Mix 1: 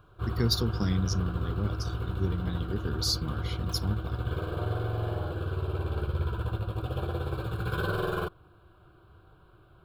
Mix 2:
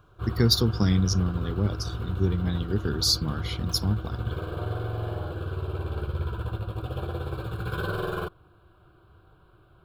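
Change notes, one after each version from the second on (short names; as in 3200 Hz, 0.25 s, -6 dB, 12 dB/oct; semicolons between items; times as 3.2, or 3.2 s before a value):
speech +6.0 dB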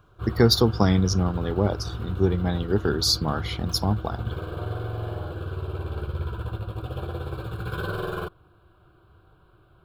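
speech: add bell 750 Hz +14.5 dB 1.9 oct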